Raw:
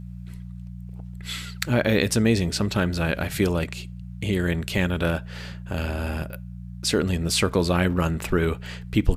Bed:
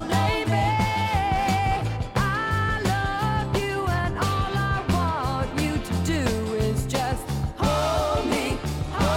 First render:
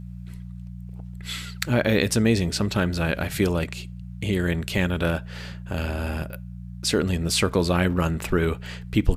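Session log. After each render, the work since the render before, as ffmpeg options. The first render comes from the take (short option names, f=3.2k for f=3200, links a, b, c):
-af anull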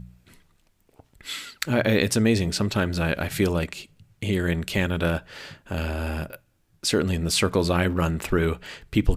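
-af "bandreject=f=60:t=h:w=4,bandreject=f=120:t=h:w=4,bandreject=f=180:t=h:w=4"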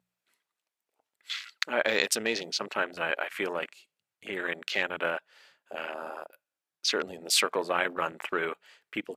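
-af "highpass=630,afwtdn=0.02"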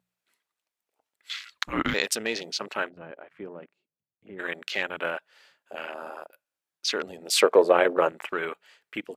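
-filter_complex "[0:a]asettb=1/sr,asplit=3[a][b][c];[a]atrim=end=1.524[d];[b]atrim=start=1.52:end=1.94,asetpts=PTS-STARTPTS,afade=t=in:d=0.004:c=qsin,afade=t=out:st=0.416:d=0.004:c=qsin,afreqshift=-300[e];[c]atrim=start=1.936[f];[d][e]acrossfade=d=0.004:c1=hsin:c2=qsin[g];[g][f]acrossfade=d=0.004:c1=qsin:c2=hsin,asplit=3[h][i][j];[h]afade=t=out:st=2.88:d=0.02[k];[i]bandpass=f=140:t=q:w=0.74,afade=t=in:st=2.88:d=0.02,afade=t=out:st=4.38:d=0.02[l];[j]afade=t=in:st=4.38:d=0.02[m];[k][l][m]amix=inputs=3:normalize=0,asettb=1/sr,asplit=3[n][o][p];[n]atrim=end=7.334[q];[o]atrim=start=7.33:end=8.09,asetpts=PTS-STARTPTS,afade=t=in:d=0.004:c=qsin,afade=t=out:st=0.756:d=0.004:c=qsin,equalizer=f=470:t=o:w=1.6:g=14[r];[p]atrim=start=8.086[s];[q][r]acrossfade=d=0.004:c1=hsin:c2=qsin[t];[t][s]acrossfade=d=0.004:c1=qsin:c2=hsin"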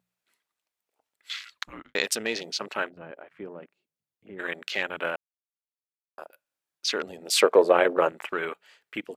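-filter_complex "[0:a]asplit=4[a][b][c][d];[a]atrim=end=1.95,asetpts=PTS-STARTPTS,afade=t=out:st=1.52:d=0.43:c=qua[e];[b]atrim=start=1.95:end=5.16,asetpts=PTS-STARTPTS,afade=t=in:d=0.004:c=hsin,afade=t=out:st=3.206:d=0.004:c=hsin[f];[c]atrim=start=5.16:end=6.18,asetpts=PTS-STARTPTS,volume=0[g];[d]atrim=start=6.18,asetpts=PTS-STARTPTS,afade=t=in:d=0.004:c=hsin[h];[e][f][g][h]concat=n=4:v=0:a=1"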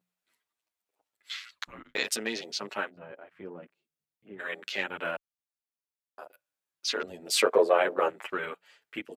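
-filter_complex "[0:a]asplit=2[a][b];[b]adelay=8.7,afreqshift=-0.57[c];[a][c]amix=inputs=2:normalize=1"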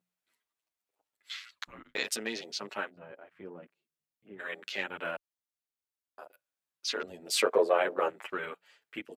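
-af "volume=-3dB"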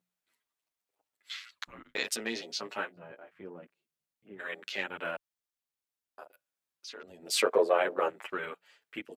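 -filter_complex "[0:a]asettb=1/sr,asplit=3[a][b][c];[a]atrim=end=2.174[d];[b]atrim=start=2.17:end=3.31,asetpts=PTS-STARTPTS,afade=t=in:d=0.004:c=qsin,afade=t=out:st=1.136:d=0.004:c=qsin,asplit=2[e][f];[f]adelay=17,volume=-8dB[g];[e][g]amix=inputs=2:normalize=0,atrim=end_sample=50274[h];[c]atrim=start=3.306[i];[d][h]acrossfade=d=0.004:c1=hsin:c2=qsin[j];[j][i]acrossfade=d=0.004:c1=qsin:c2=hsin,asettb=1/sr,asplit=3[k][l][m];[k]atrim=end=6.234[n];[l]atrim=start=6.23:end=7.23,asetpts=PTS-STARTPTS,afade=t=in:d=0.004:c=qsin,afade=t=out:st=0.996:d=0.004:c=qsin,acompressor=threshold=-51dB:ratio=2:attack=3.2:release=140:knee=1:detection=peak[o];[m]atrim=start=7.226[p];[n][o]acrossfade=d=0.004:c1=hsin:c2=qsin[q];[q][p]acrossfade=d=0.004:c1=qsin:c2=hsin"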